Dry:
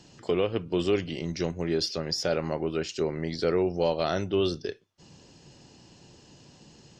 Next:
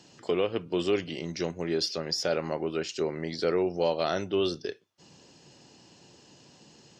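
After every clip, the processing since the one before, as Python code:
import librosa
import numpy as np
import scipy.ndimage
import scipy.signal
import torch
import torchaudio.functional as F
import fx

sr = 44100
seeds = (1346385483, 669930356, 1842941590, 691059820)

y = fx.highpass(x, sr, hz=220.0, slope=6)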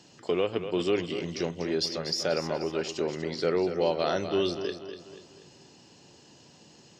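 y = fx.echo_feedback(x, sr, ms=242, feedback_pct=44, wet_db=-9.5)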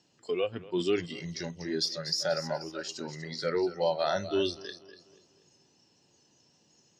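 y = fx.noise_reduce_blind(x, sr, reduce_db=13)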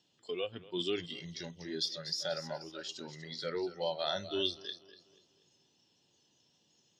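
y = fx.peak_eq(x, sr, hz=3400.0, db=13.5, octaves=0.38)
y = y * librosa.db_to_amplitude(-7.5)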